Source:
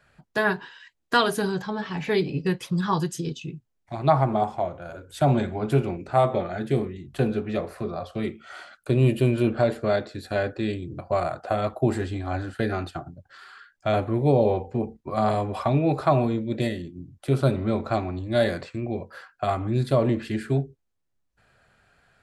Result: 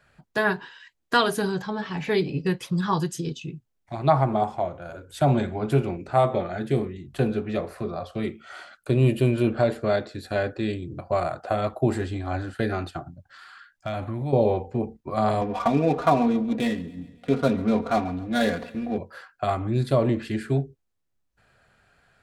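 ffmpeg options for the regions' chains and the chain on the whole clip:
-filter_complex "[0:a]asettb=1/sr,asplit=3[a][b][c];[a]atrim=end=13.064[d];[b]atrim=start=13.06:end=14.33,asetpts=PTS-STARTPTS,afade=t=in:d=0.004:c=qsin,afade=t=out:st=1.266:d=0.004:c=qsin,equalizer=f=430:t=o:w=0.49:g=-13,acompressor=threshold=-25dB:ratio=6:attack=3.2:release=140:knee=1:detection=peak,asoftclip=type=hard:threshold=-20dB[e];[c]atrim=start=14.326[f];[d][e]acrossfade=d=0.004:c1=hsin:c2=qsin[g];[g][f]acrossfade=d=0.004:c1=qsin:c2=hsin,asettb=1/sr,asplit=3[h][i][j];[h]atrim=end=15.414[k];[i]atrim=start=15.41:end=18.98,asetpts=PTS-STARTPTS,afade=t=in:d=0.004:c=qsin,afade=t=out:st=3.566:d=0.004:c=qsin,aecho=1:1:4.2:0.88,atrim=end_sample=157437,adynamicsmooth=sensitivity=7:basefreq=1.2k,aecho=1:1:138|276|414|552:0.0944|0.0538|0.0307|0.0175,atrim=end_sample=157437[l];[j]atrim=start=18.976[m];[k][l]acrossfade=d=0.004:c1=hsin:c2=qsin[n];[n][m]acrossfade=d=0.004:c1=qsin:c2=hsin"

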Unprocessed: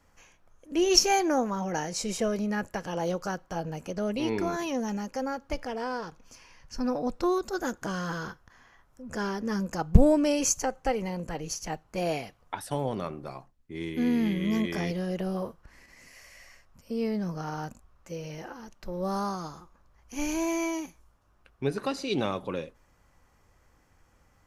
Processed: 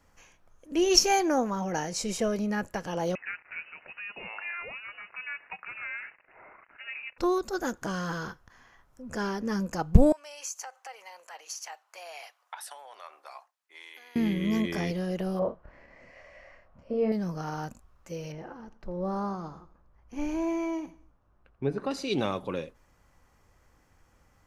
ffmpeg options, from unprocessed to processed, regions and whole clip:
-filter_complex "[0:a]asettb=1/sr,asplit=3[a][b][c];[a]atrim=end=3.154[d];[b]atrim=start=3.15:end=7.18,asetpts=PTS-STARTPTS,afade=t=in:d=0.004:c=qsin,afade=t=out:st=4.026:d=0.004:c=qsin,aeval=exprs='val(0)+0.5*0.00596*sgn(val(0))':c=same,highpass=960,lowpass=f=2.6k:t=q:w=0.5098,lowpass=f=2.6k:t=q:w=0.6013,lowpass=f=2.6k:t=q:w=0.9,lowpass=f=2.6k:t=q:w=2.563,afreqshift=-3100[e];[c]atrim=start=7.176[f];[d][e]acrossfade=d=0.004:c1=hsin:c2=qsin[g];[g][f]acrossfade=d=0.004:c1=qsin:c2=hsin,asettb=1/sr,asplit=3[h][i][j];[h]atrim=end=10.124[k];[i]atrim=start=10.12:end=14.16,asetpts=PTS-STARTPTS,afade=t=in:d=0.004:c=qsin,afade=t=out:st=4.036:d=0.004:c=qsin,acompressor=threshold=-33dB:ratio=6:attack=3.2:release=140:knee=1:detection=peak,highpass=f=750:w=0.5412,highpass=f=750:w=1.3066[l];[j]atrim=start=14.156[m];[k][l]acrossfade=d=0.004:c1=hsin:c2=qsin[n];[n][m]acrossfade=d=0.004:c1=qsin:c2=hsin,asettb=1/sr,asplit=3[o][p][q];[o]atrim=end=15.394[r];[p]atrim=start=15.39:end=17.12,asetpts=PTS-STARTPTS,afade=t=in:d=0.004:c=qsin,afade=t=out:st=1.726:d=0.004:c=qsin,lowpass=2.1k,equalizer=f=600:w=2.5:g=10.5,asplit=2[s][t];[t]adelay=28,volume=-4dB[u];[s][u]amix=inputs=2:normalize=0,atrim=end_sample=76293[v];[q]atrim=start=17.116[w];[r][v]acrossfade=d=0.004:c1=hsin:c2=qsin[x];[x][w]acrossfade=d=0.004:c1=qsin:c2=hsin,asettb=1/sr,asplit=3[y][z][aa];[y]atrim=end=18.324[ab];[z]atrim=start=18.32:end=21.91,asetpts=PTS-STARTPTS,afade=t=in:d=0.004:c=qsin,afade=t=out:st=3.586:d=0.004:c=qsin,lowpass=f=1.1k:p=1,aecho=1:1:85|170|255:0.126|0.0491|0.0191,atrim=end_sample=158319[ac];[aa]atrim=start=21.906[ad];[ab][ac]acrossfade=d=0.004:c1=hsin:c2=qsin[ae];[ae][ad]acrossfade=d=0.004:c1=qsin:c2=hsin"

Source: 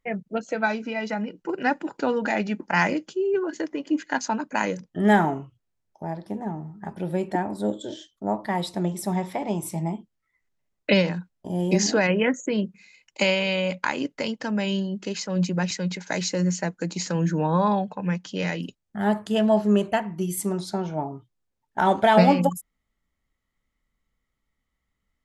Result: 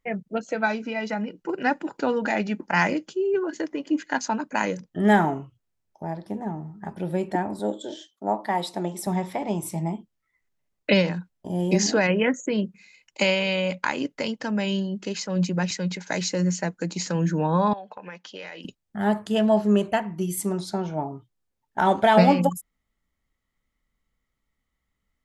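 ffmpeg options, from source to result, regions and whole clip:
-filter_complex "[0:a]asettb=1/sr,asplit=3[a][b][c];[a]atrim=end=7.594[d];[b]atrim=start=7.59:end=9.07,asetpts=PTS-STARTPTS,afade=t=in:d=0.004:c=qsin,afade=t=out:st=1.476:d=0.004:c=qsin,highpass=230,equalizer=f=810:w=3.7:g=5[e];[c]atrim=start=9.066[f];[d][e]acrossfade=d=0.004:c1=hsin:c2=qsin[g];[g][f]acrossfade=d=0.004:c1=qsin:c2=hsin,asettb=1/sr,asplit=3[h][i][j];[h]atrim=end=17.734[k];[i]atrim=start=17.73:end=18.65,asetpts=PTS-STARTPTS,afade=t=in:d=0.004:c=qsin,afade=t=out:st=0.916:d=0.004:c=qsin,highpass=480,lowpass=4.8k,acompressor=threshold=-33dB:ratio=12:attack=3.2:release=140:knee=1:detection=peak[l];[j]atrim=start=18.646[m];[k][l]acrossfade=d=0.004:c1=hsin:c2=qsin[n];[n][m]acrossfade=d=0.004:c1=qsin:c2=hsin"

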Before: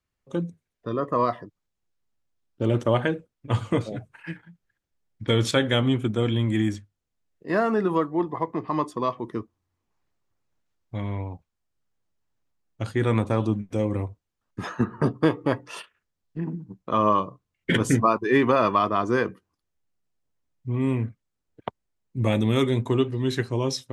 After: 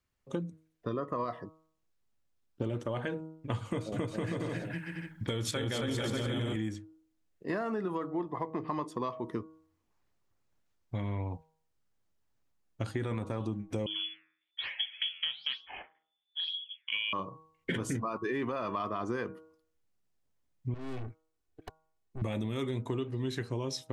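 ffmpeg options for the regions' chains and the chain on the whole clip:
-filter_complex "[0:a]asettb=1/sr,asplit=3[a][b][c];[a]atrim=end=3.654[d];[b]atrim=start=3.65:end=6.56,asetpts=PTS-STARTPTS,afade=t=in:d=0.004:c=qsin,afade=t=out:st=2.906:d=0.004:c=qsin,highshelf=f=8.8k:g=10,aecho=1:1:270|459|591.3|683.9|748.7:0.794|0.631|0.501|0.398|0.316,atrim=end_sample=128331[e];[c]atrim=start=6.556[f];[d][e]acrossfade=d=0.004:c1=hsin:c2=qsin[g];[g][f]acrossfade=d=0.004:c1=qsin:c2=hsin,asettb=1/sr,asplit=3[h][i][j];[h]atrim=end=13.864[k];[i]atrim=start=13.86:end=17.13,asetpts=PTS-STARTPTS,afade=t=in:d=0.004:c=qsin,afade=t=out:st=3.266:d=0.004:c=qsin,lowpass=f=3k:t=q:w=0.5098,lowpass=f=3k:t=q:w=0.6013,lowpass=f=3k:t=q:w=0.9,lowpass=f=3k:t=q:w=2.563,afreqshift=-3500,flanger=delay=2.3:depth=9.5:regen=-87:speed=1.1:shape=sinusoidal[l];[j]atrim=start=17.126[m];[k][l]acrossfade=d=0.004:c1=hsin:c2=qsin[n];[n][m]acrossfade=d=0.004:c1=qsin:c2=hsin,asettb=1/sr,asplit=3[o][p][q];[o]atrim=end=20.744[r];[p]atrim=start=20.74:end=22.22,asetpts=PTS-STARTPTS,afade=t=in:d=0.004:c=qsin,afade=t=out:st=1.476:d=0.004:c=qsin,aeval=exprs='(tanh(79.4*val(0)+0.6)-tanh(0.6))/79.4':c=same,aecho=1:1:2.7:0.47,atrim=end_sample=65268[s];[q]atrim=start=22.216[t];[r][s]acrossfade=d=0.004:c1=hsin:c2=qsin[u];[u][t]acrossfade=d=0.004:c1=qsin:c2=hsin,bandreject=f=158.8:t=h:w=4,bandreject=f=317.6:t=h:w=4,bandreject=f=476.4:t=h:w=4,bandreject=f=635.2:t=h:w=4,bandreject=f=794:t=h:w=4,bandreject=f=952.8:t=h:w=4,bandreject=f=1.1116k:t=h:w=4,bandreject=f=1.2704k:t=h:w=4,bandreject=f=1.4292k:t=h:w=4,alimiter=limit=-14.5dB:level=0:latency=1:release=11,acompressor=threshold=-31dB:ratio=6"

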